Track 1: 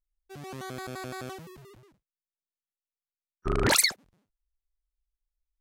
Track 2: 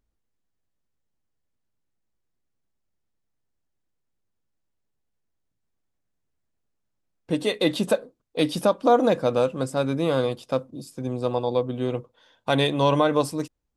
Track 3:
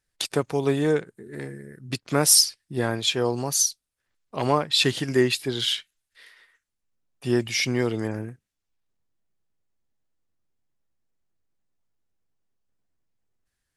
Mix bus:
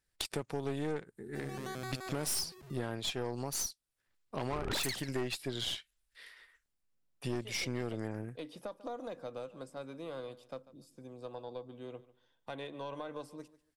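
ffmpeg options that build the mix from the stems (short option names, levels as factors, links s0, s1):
-filter_complex "[0:a]adelay=1050,volume=1.19,asplit=2[s0][s1];[s1]volume=0.119[s2];[1:a]acrossover=split=290|3000[s3][s4][s5];[s3]acompressor=threshold=0.0141:ratio=4[s6];[s4]acompressor=threshold=0.1:ratio=4[s7];[s5]acompressor=threshold=0.00794:ratio=4[s8];[s6][s7][s8]amix=inputs=3:normalize=0,volume=0.188,asplit=2[s9][s10];[s10]volume=0.119[s11];[2:a]bandreject=f=6400:w=18,volume=1[s12];[s2][s11]amix=inputs=2:normalize=0,aecho=0:1:144|288|432:1|0.21|0.0441[s13];[s0][s9][s12][s13]amix=inputs=4:normalize=0,aeval=exprs='(tanh(8.91*val(0)+0.6)-tanh(0.6))/8.91':c=same,acompressor=threshold=0.0141:ratio=2.5"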